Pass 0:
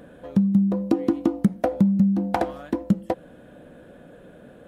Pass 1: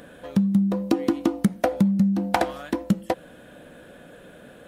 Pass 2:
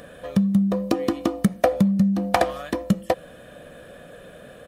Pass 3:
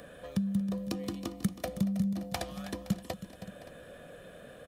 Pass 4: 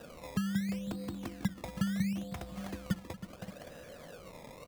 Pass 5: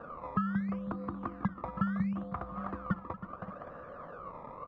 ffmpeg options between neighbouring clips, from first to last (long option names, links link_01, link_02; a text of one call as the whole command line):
ffmpeg -i in.wav -af "tiltshelf=frequency=1200:gain=-5.5,volume=4dB" out.wav
ffmpeg -i in.wav -af "aecho=1:1:1.7:0.41,volume=2dB" out.wav
ffmpeg -i in.wav -filter_complex "[0:a]acrossover=split=170|3000[link_01][link_02][link_03];[link_02]acompressor=threshold=-40dB:ratio=2[link_04];[link_01][link_04][link_03]amix=inputs=3:normalize=0,asplit=2[link_05][link_06];[link_06]aecho=0:1:231|320|517|573:0.133|0.211|0.126|0.133[link_07];[link_05][link_07]amix=inputs=2:normalize=0,volume=-6dB" out.wav
ffmpeg -i in.wav -filter_complex "[0:a]acrossover=split=210[link_01][link_02];[link_02]acompressor=threshold=-41dB:ratio=6[link_03];[link_01][link_03]amix=inputs=2:normalize=0,acrusher=samples=20:mix=1:aa=0.000001:lfo=1:lforange=20:lforate=0.73" out.wav
ffmpeg -i in.wav -af "lowpass=frequency=1200:width_type=q:width=7.3" out.wav